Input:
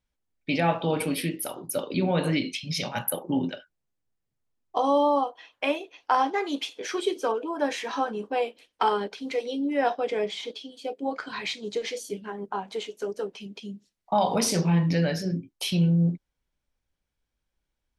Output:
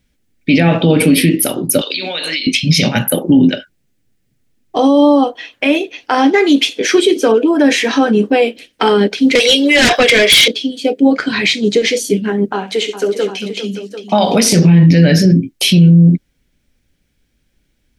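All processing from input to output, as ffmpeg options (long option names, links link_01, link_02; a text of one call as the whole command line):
ffmpeg -i in.wav -filter_complex "[0:a]asettb=1/sr,asplit=3[link_01][link_02][link_03];[link_01]atrim=end=1.814[link_04];[link_02]atrim=start=1.81:end=2.47,asetpts=PTS-STARTPTS,afade=type=in:duration=0.004:curve=qsin,afade=type=out:start_time=0.656:duration=0.004:curve=qsin,highpass=810,equalizer=frequency=4100:width_type=o:width=1.2:gain=14,acompressor=threshold=-34dB:ratio=12:attack=3.2:release=140:knee=1:detection=peak[link_05];[link_03]atrim=start=2.466[link_06];[link_04][link_05]acrossfade=duration=0.004:curve1=hsin:curve2=qsin[link_07];[link_07][link_06]acrossfade=duration=0.004:curve1=qsin:curve2=hsin,asettb=1/sr,asplit=3[link_08][link_09][link_10];[link_08]atrim=end=9.354[link_11];[link_09]atrim=start=9.35:end=10.48,asetpts=PTS-STARTPTS,afade=type=in:duration=0.004:curve=qsin,afade=type=out:start_time=1.126:duration=0.004:curve=qsin,highpass=1100,aecho=1:1:1.8:0.37,atrim=end_sample=49833,aeval=exprs='0.126*sin(PI/2*5.01*val(0)/0.126)':channel_layout=same[link_12];[link_10]atrim=start=10.476[link_13];[link_11][link_12]acrossfade=duration=0.004:curve1=hsin:curve2=qsin[link_14];[link_14][link_13]acrossfade=duration=0.004:curve1=qsin:curve2=hsin,asettb=1/sr,asplit=3[link_15][link_16][link_17];[link_15]atrim=end=12.534[link_18];[link_16]atrim=start=12.53:end=14.53,asetpts=PTS-STARTPTS,afade=type=in:duration=0.004:curve=qsin,afade=type=out:start_time=1.996:duration=0.004:curve=qsin,highpass=frequency=480:poles=1,aecho=1:1:67|401|743:0.224|0.251|0.251,atrim=end_sample=88200[link_19];[link_17]atrim=start=14.526[link_20];[link_18][link_19]acrossfade=duration=0.004:curve1=hsin:curve2=qsin[link_21];[link_21][link_20]acrossfade=duration=0.004:curve1=qsin:curve2=hsin,equalizer=frequency=125:width_type=o:width=1:gain=3,equalizer=frequency=250:width_type=o:width=1:gain=7,equalizer=frequency=1000:width_type=o:width=1:gain=-11,equalizer=frequency=2000:width_type=o:width=1:gain=4,alimiter=level_in=19dB:limit=-1dB:release=50:level=0:latency=1,volume=-1dB" out.wav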